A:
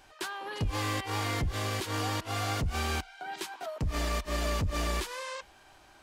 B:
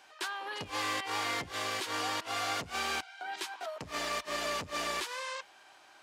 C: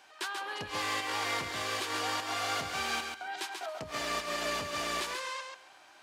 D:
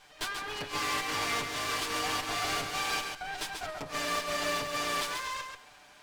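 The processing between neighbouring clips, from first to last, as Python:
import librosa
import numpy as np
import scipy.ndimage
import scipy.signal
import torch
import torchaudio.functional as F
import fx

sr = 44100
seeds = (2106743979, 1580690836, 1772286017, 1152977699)

y1 = fx.weighting(x, sr, curve='A')
y2 = fx.echo_feedback(y1, sr, ms=137, feedback_pct=17, wet_db=-5.5)
y3 = fx.lower_of_two(y2, sr, delay_ms=6.8)
y3 = y3 * librosa.db_to_amplitude(3.0)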